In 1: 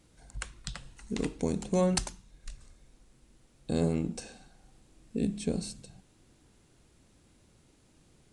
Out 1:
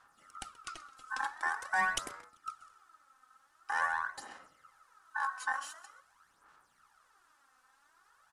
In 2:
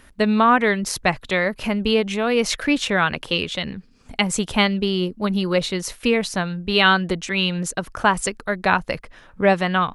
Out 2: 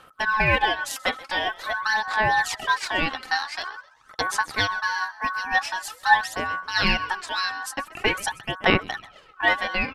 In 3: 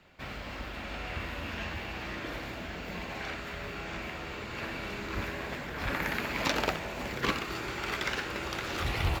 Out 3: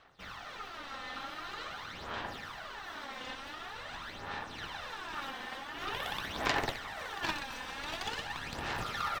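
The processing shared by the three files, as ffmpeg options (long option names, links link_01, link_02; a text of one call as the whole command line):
ffmpeg -i in.wav -filter_complex "[0:a]equalizer=frequency=480:width=6.3:gain=8.5,asplit=4[link_01][link_02][link_03][link_04];[link_02]adelay=130,afreqshift=88,volume=-20dB[link_05];[link_03]adelay=260,afreqshift=176,volume=-28.4dB[link_06];[link_04]adelay=390,afreqshift=264,volume=-36.8dB[link_07];[link_01][link_05][link_06][link_07]amix=inputs=4:normalize=0,aeval=exprs='val(0)*sin(2*PI*1300*n/s)':channel_layout=same,aphaser=in_gain=1:out_gain=1:delay=3.9:decay=0.57:speed=0.46:type=sinusoidal,volume=-4.5dB" out.wav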